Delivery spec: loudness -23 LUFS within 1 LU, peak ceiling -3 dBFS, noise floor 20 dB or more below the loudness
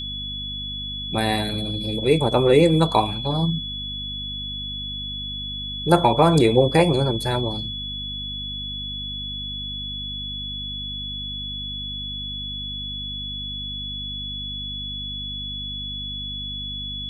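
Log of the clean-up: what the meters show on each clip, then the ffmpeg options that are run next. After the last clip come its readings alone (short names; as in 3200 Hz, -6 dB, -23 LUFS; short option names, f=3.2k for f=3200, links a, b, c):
hum 50 Hz; harmonics up to 250 Hz; hum level -33 dBFS; steady tone 3400 Hz; tone level -29 dBFS; loudness -24.0 LUFS; peak -2.5 dBFS; loudness target -23.0 LUFS
-> -af "bandreject=f=50:t=h:w=4,bandreject=f=100:t=h:w=4,bandreject=f=150:t=h:w=4,bandreject=f=200:t=h:w=4,bandreject=f=250:t=h:w=4"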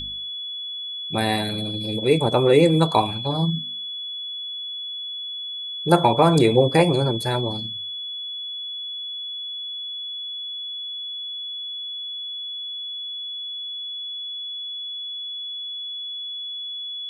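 hum none; steady tone 3400 Hz; tone level -29 dBFS
-> -af "bandreject=f=3.4k:w=30"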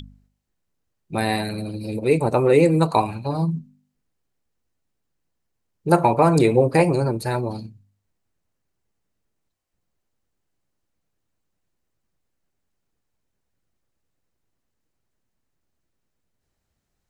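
steady tone none; loudness -20.0 LUFS; peak -3.0 dBFS; loudness target -23.0 LUFS
-> -af "volume=-3dB"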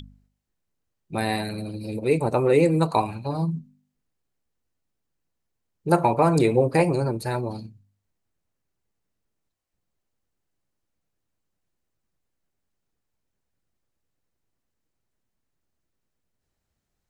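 loudness -23.0 LUFS; peak -6.0 dBFS; noise floor -80 dBFS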